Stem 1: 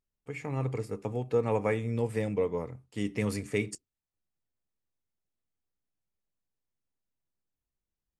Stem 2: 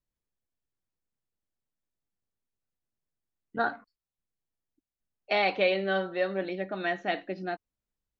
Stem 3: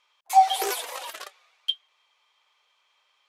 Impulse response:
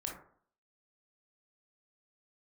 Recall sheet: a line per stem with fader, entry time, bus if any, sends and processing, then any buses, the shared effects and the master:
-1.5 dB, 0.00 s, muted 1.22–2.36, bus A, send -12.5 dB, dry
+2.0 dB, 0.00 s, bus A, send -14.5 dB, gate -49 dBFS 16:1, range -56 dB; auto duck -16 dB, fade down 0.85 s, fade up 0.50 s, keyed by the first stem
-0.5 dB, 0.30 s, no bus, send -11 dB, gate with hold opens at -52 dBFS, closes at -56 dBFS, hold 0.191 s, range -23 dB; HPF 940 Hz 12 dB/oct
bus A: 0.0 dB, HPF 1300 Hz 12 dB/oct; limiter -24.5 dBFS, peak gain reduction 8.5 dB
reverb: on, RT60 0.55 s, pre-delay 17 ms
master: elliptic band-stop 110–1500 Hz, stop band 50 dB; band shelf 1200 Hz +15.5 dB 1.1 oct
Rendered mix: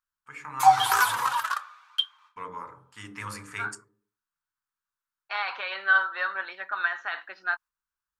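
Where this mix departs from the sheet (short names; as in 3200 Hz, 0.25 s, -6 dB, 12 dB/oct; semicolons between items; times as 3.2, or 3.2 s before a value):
stem 2: send off; master: missing elliptic band-stop 110–1500 Hz, stop band 50 dB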